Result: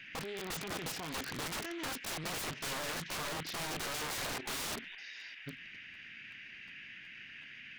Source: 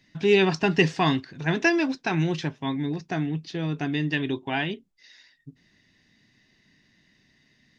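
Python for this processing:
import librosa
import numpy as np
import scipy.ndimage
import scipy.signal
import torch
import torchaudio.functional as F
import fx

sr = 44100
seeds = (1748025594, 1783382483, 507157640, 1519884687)

p1 = fx.over_compress(x, sr, threshold_db=-31.0, ratio=-1.0)
p2 = p1 + fx.echo_wet_highpass(p1, sr, ms=225, feedback_pct=72, hz=2100.0, wet_db=-18.0, dry=0)
p3 = fx.level_steps(p2, sr, step_db=11)
p4 = fx.dmg_noise_band(p3, sr, seeds[0], low_hz=1600.0, high_hz=2900.0, level_db=-53.0)
p5 = (np.mod(10.0 ** (35.5 / 20.0) * p4 + 1.0, 2.0) - 1.0) / 10.0 ** (35.5 / 20.0)
p6 = fx.buffer_crackle(p5, sr, first_s=0.38, period_s=0.37, block=512, kind='repeat')
p7 = fx.doppler_dist(p6, sr, depth_ms=0.54)
y = F.gain(torch.from_numpy(p7), 2.5).numpy()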